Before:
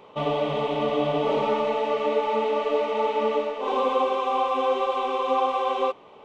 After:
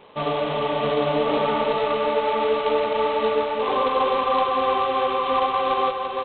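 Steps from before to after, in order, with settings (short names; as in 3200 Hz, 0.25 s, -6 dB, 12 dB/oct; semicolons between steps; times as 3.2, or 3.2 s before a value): dynamic EQ 1300 Hz, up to +5 dB, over -41 dBFS, Q 2.3; echo 0.344 s -4 dB; G.726 16 kbps 8000 Hz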